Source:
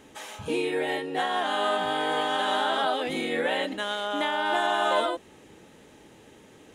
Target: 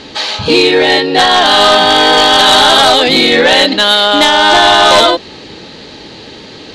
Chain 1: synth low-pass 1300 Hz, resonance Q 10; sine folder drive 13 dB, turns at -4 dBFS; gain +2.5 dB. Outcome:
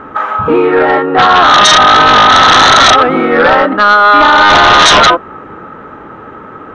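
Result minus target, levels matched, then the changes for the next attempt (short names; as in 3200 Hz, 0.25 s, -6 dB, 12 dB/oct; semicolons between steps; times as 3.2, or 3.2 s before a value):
4000 Hz band -4.5 dB
change: synth low-pass 4400 Hz, resonance Q 10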